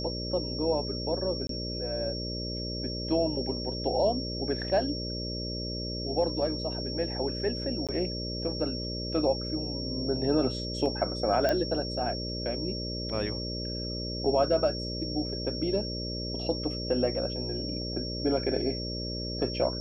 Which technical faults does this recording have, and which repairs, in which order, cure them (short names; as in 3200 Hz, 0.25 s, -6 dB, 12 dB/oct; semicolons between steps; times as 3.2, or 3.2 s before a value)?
buzz 60 Hz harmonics 10 -36 dBFS
tone 5500 Hz -36 dBFS
1.47–1.49 gap 23 ms
7.87–7.89 gap 17 ms
11.49 pop -14 dBFS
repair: de-click; de-hum 60 Hz, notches 10; notch 5500 Hz, Q 30; interpolate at 1.47, 23 ms; interpolate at 7.87, 17 ms